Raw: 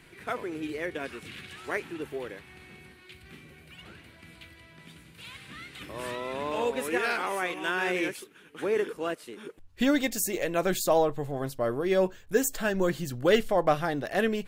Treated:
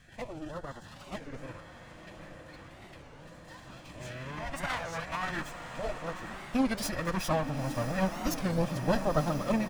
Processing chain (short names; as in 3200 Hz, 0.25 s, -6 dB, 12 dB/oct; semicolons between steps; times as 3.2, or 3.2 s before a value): minimum comb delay 1.2 ms; high shelf 7800 Hz -4.5 dB; echo 0.336 s -22 dB; formant shift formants -5 st; LFO notch sine 0.24 Hz 320–2400 Hz; time stretch by phase-locked vocoder 0.67×; diffused feedback echo 0.971 s, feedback 77%, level -8.5 dB; record warp 33 1/3 rpm, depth 250 cents